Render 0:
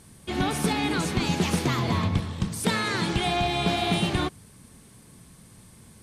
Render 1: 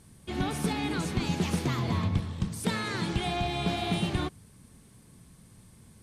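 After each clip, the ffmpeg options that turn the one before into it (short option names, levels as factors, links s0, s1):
-af "lowshelf=f=240:g=5,volume=0.473"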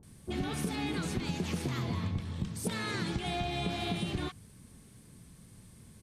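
-filter_complex "[0:a]acrossover=split=930[s0][s1];[s1]adelay=30[s2];[s0][s2]amix=inputs=2:normalize=0,acompressor=threshold=0.0316:ratio=6"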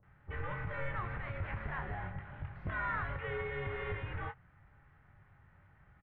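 -filter_complex "[0:a]highpass=f=150:t=q:w=0.5412,highpass=f=150:t=q:w=1.307,lowpass=f=2100:t=q:w=0.5176,lowpass=f=2100:t=q:w=0.7071,lowpass=f=2100:t=q:w=1.932,afreqshift=-280,tiltshelf=f=1100:g=-7.5,asplit=2[s0][s1];[s1]adelay=22,volume=0.355[s2];[s0][s2]amix=inputs=2:normalize=0,volume=1.33"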